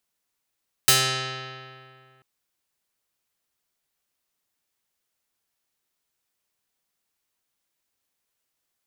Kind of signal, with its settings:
Karplus-Strong string C3, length 1.34 s, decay 2.30 s, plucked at 0.45, medium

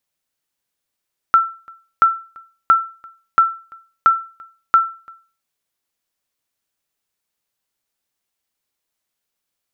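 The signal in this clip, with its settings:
ping with an echo 1,340 Hz, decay 0.37 s, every 0.68 s, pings 6, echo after 0.34 s, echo −27.5 dB −4 dBFS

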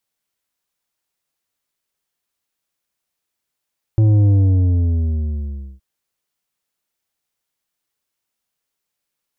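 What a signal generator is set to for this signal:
bass drop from 110 Hz, over 1.82 s, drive 8 dB, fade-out 1.52 s, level −10.5 dB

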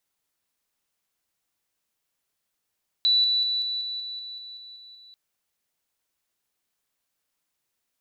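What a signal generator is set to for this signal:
level staircase 3,960 Hz −17 dBFS, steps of −3 dB, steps 11, 0.19 s 0.00 s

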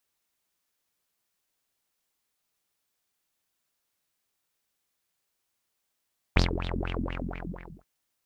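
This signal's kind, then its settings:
subtractive patch with filter wobble F2, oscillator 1 saw, sub −1.5 dB, noise −13 dB, filter lowpass, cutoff 540 Hz, Q 8, filter envelope 1.5 octaves, filter decay 0.45 s, attack 1.8 ms, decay 0.13 s, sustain −13 dB, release 0.88 s, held 0.60 s, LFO 4.2 Hz, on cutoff 1.9 octaves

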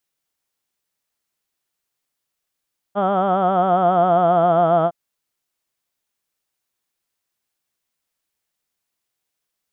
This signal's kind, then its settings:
vowel from formants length 1.96 s, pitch 196 Hz, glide −3 semitones, vibrato 7.4 Hz, vibrato depth 0.8 semitones, F1 690 Hz, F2 1,300 Hz, F3 3,200 Hz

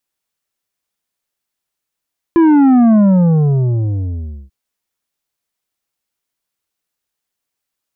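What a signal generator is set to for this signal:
bass drop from 340 Hz, over 2.14 s, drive 8 dB, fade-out 1.55 s, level −7 dB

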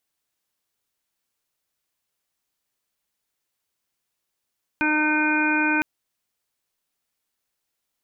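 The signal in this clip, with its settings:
steady harmonic partials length 1.01 s, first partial 305 Hz, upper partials −13.5/−4/−16.5/0/−18.5/−12/−1.5 dB, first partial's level −23 dB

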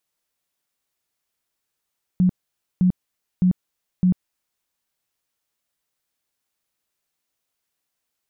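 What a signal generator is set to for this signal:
tone bursts 182 Hz, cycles 17, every 0.61 s, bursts 4, −13 dBFS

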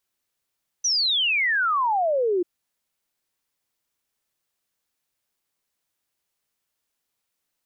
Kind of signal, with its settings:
exponential sine sweep 6,100 Hz → 340 Hz 1.59 s −19 dBFS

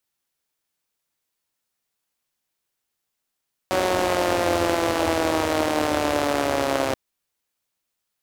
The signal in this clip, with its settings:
pulse-train model of a four-cylinder engine, changing speed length 3.23 s, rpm 5,600, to 4,000, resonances 94/320/550 Hz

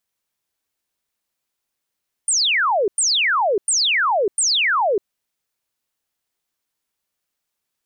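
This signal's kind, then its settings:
repeated falling chirps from 9,400 Hz, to 370 Hz, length 0.60 s sine, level −15 dB, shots 4, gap 0.10 s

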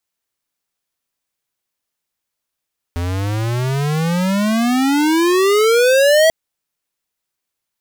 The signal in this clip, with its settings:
pitch glide with a swell square, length 3.34 s, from 84.4 Hz, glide +35.5 semitones, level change +10 dB, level −10.5 dB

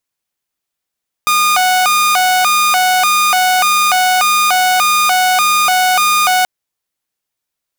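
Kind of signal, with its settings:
siren hi-lo 738–1,220 Hz 1.7 per second saw −7 dBFS 5.18 s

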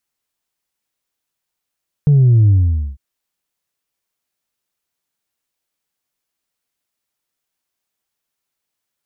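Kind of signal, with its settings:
bass drop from 150 Hz, over 0.90 s, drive 1 dB, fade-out 0.48 s, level −7.5 dB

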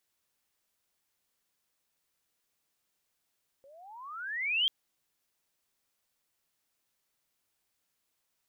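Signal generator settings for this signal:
pitch glide with a swell sine, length 1.04 s, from 530 Hz, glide +31.5 semitones, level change +30.5 dB, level −23 dB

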